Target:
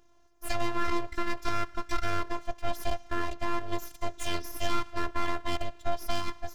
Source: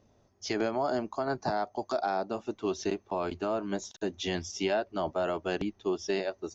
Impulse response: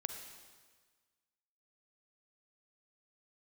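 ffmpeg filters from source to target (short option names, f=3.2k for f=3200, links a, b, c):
-filter_complex "[0:a]asplit=2[a][b];[1:a]atrim=start_sample=2205[c];[b][c]afir=irnorm=-1:irlink=0,volume=-12dB[d];[a][d]amix=inputs=2:normalize=0,aeval=exprs='abs(val(0))':c=same,afftfilt=real='hypot(re,im)*cos(PI*b)':imag='0':win_size=512:overlap=0.75,volume=4.5dB"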